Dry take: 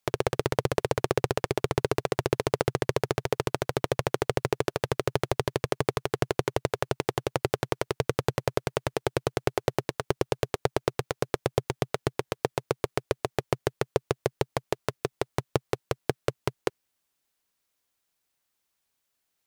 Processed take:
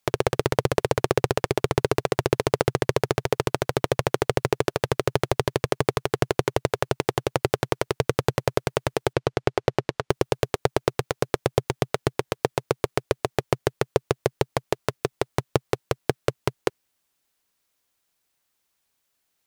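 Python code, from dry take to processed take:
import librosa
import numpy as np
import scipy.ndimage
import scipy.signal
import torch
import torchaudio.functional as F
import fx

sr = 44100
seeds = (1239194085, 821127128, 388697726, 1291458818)

y = fx.air_absorb(x, sr, metres=76.0, at=(9.13, 10.1))
y = y * librosa.db_to_amplitude(4.0)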